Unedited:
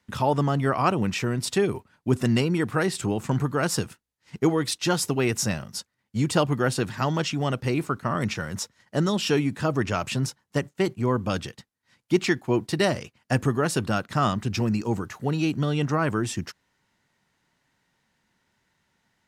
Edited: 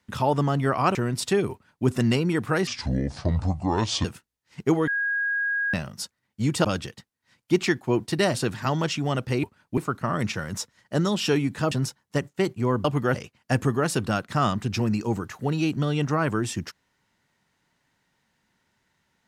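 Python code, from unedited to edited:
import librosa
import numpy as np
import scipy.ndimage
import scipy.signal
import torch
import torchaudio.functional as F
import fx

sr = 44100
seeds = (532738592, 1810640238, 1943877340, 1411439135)

y = fx.edit(x, sr, fx.cut(start_s=0.95, length_s=0.25),
    fx.duplicate(start_s=1.77, length_s=0.34, to_s=7.79),
    fx.speed_span(start_s=2.92, length_s=0.88, speed=0.64),
    fx.bleep(start_s=4.63, length_s=0.86, hz=1640.0, db=-22.5),
    fx.swap(start_s=6.4, length_s=0.3, other_s=11.25, other_length_s=1.7),
    fx.cut(start_s=9.73, length_s=0.39), tone=tone)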